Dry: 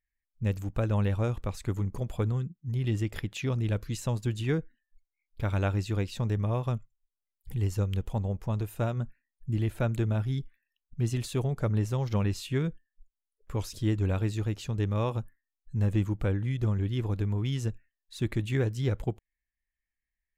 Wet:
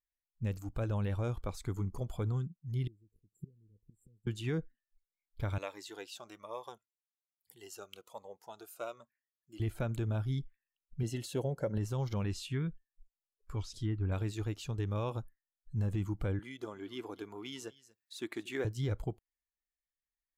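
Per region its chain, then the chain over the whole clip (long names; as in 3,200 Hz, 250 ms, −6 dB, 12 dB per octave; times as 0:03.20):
0:02.87–0:04.27: bass and treble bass +2 dB, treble −6 dB + gate with flip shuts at −26 dBFS, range −25 dB + linear-phase brick-wall band-stop 510–7,200 Hz
0:05.58–0:09.60: high-pass filter 530 Hz + phaser whose notches keep moving one way falling 1.2 Hz
0:11.03–0:11.78: parametric band 540 Hz +11 dB 0.21 octaves + notch comb filter 1,200 Hz
0:12.32–0:14.12: treble cut that deepens with the level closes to 2,100 Hz, closed at −22.5 dBFS + dynamic equaliser 590 Hz, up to −8 dB, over −45 dBFS, Q 0.7
0:16.39–0:18.65: high-pass filter 310 Hz + single-tap delay 237 ms −18.5 dB + one half of a high-frequency compander encoder only
whole clip: noise reduction from a noise print of the clip's start 9 dB; brickwall limiter −21 dBFS; level −3.5 dB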